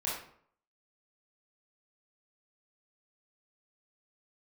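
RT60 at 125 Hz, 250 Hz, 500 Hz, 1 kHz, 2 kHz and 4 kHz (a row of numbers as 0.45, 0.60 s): 0.65, 0.60, 0.60, 0.60, 0.50, 0.40 s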